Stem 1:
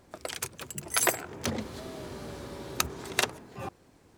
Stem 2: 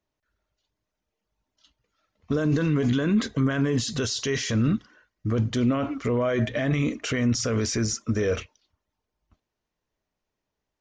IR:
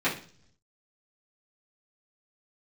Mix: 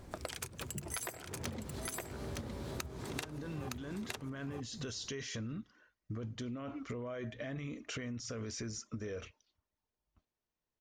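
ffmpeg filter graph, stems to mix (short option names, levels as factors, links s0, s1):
-filter_complex "[0:a]lowshelf=f=130:g=11.5,volume=1.33,asplit=2[s0][s1];[s1]volume=0.562[s2];[1:a]adelay=850,volume=0.355[s3];[s2]aecho=0:1:913:1[s4];[s0][s3][s4]amix=inputs=3:normalize=0,acompressor=threshold=0.0126:ratio=12"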